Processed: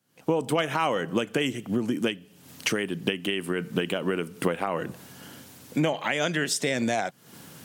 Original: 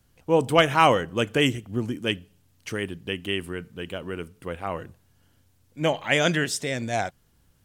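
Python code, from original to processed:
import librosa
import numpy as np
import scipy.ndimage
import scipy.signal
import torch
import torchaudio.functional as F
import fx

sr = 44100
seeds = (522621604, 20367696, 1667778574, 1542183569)

y = fx.recorder_agc(x, sr, target_db=-7.5, rise_db_per_s=72.0, max_gain_db=30)
y = scipy.signal.sosfilt(scipy.signal.butter(4, 150.0, 'highpass', fs=sr, output='sos'), y)
y = F.gain(torch.from_numpy(y), -8.5).numpy()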